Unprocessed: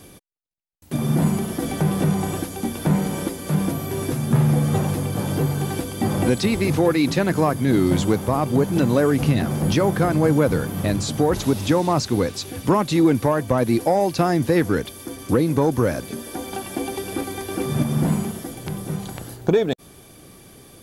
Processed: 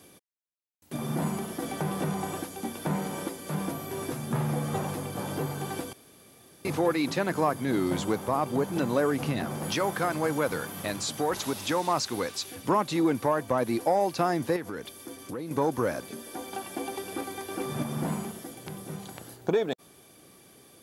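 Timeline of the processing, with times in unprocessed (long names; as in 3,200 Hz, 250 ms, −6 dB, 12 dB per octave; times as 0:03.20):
0:05.93–0:06.65: fill with room tone
0:09.62–0:12.55: tilt shelving filter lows −4 dB, about 940 Hz
0:14.56–0:15.51: downward compressor 4 to 1, threshold −24 dBFS
whole clip: high-pass filter 240 Hz 6 dB per octave; dynamic equaliser 1,000 Hz, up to +4 dB, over −36 dBFS, Q 0.94; level −7 dB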